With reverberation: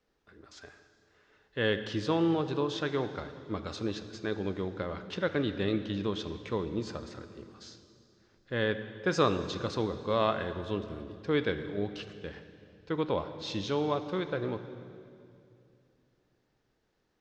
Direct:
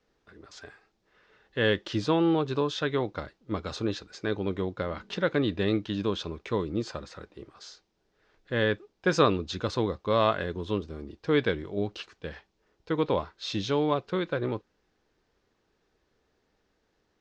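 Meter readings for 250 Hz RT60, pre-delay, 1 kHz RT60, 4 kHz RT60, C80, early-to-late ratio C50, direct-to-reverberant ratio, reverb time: 3.1 s, 27 ms, 2.3 s, 2.2 s, 11.5 dB, 10.5 dB, 10.0 dB, 2.5 s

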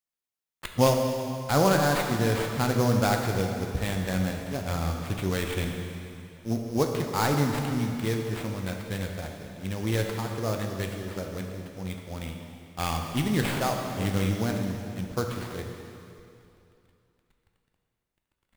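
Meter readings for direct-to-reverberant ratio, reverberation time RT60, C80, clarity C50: 2.0 dB, 2.7 s, 4.5 dB, 3.5 dB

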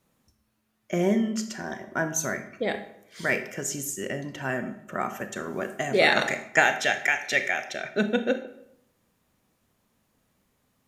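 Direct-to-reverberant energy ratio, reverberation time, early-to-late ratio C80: 8.5 dB, 0.75 s, 13.5 dB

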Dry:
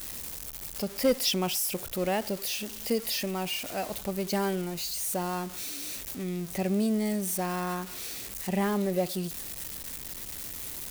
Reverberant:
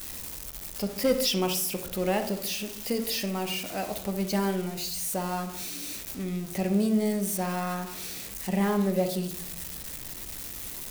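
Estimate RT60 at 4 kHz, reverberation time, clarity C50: 0.40 s, 0.60 s, 9.5 dB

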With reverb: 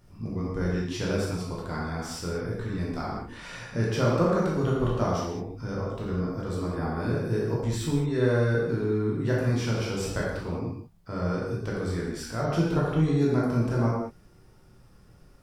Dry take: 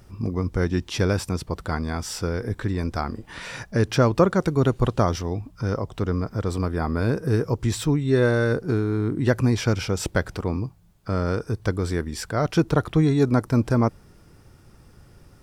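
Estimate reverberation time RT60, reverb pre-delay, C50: no single decay rate, 9 ms, -0.5 dB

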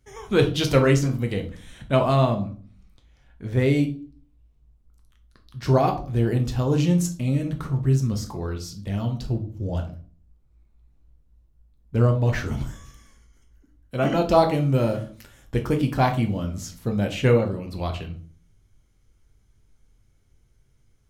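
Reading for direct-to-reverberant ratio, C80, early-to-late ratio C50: 4.0 dB, 17.0 dB, 11.5 dB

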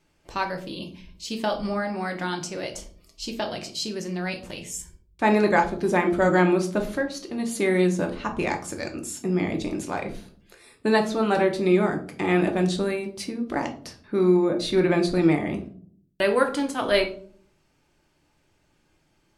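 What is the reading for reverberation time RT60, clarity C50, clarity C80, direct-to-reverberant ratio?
0.50 s, 12.0 dB, 16.0 dB, 3.5 dB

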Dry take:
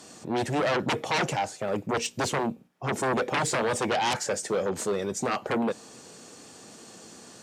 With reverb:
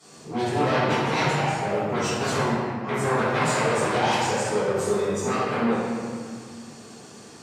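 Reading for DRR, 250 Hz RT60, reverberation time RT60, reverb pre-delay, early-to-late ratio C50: -14.0 dB, 3.0 s, 2.0 s, 3 ms, -3.5 dB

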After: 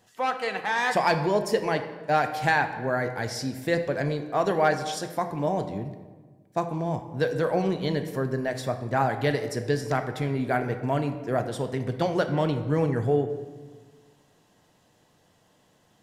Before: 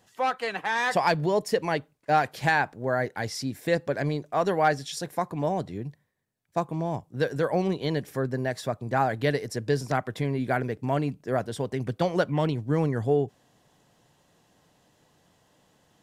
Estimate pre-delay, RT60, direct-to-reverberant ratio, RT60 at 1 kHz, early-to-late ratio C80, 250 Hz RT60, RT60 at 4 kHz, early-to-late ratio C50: 3 ms, 1.5 s, 7.0 dB, 1.4 s, 11.0 dB, 1.8 s, 0.85 s, 9.5 dB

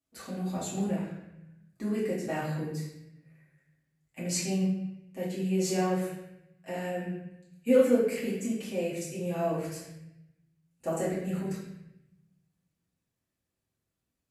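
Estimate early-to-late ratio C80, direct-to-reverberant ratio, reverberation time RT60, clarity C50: 5.0 dB, -8.5 dB, 0.85 s, 2.0 dB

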